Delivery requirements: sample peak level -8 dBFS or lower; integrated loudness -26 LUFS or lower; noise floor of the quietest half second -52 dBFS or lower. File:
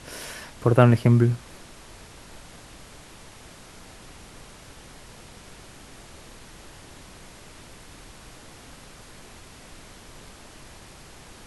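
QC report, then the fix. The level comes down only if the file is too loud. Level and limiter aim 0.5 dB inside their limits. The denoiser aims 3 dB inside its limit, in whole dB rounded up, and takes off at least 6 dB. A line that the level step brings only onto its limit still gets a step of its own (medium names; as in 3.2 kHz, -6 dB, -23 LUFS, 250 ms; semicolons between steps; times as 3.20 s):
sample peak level -2.5 dBFS: fail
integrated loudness -21.0 LUFS: fail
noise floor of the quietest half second -46 dBFS: fail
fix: noise reduction 6 dB, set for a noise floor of -46 dBFS; trim -5.5 dB; peak limiter -8.5 dBFS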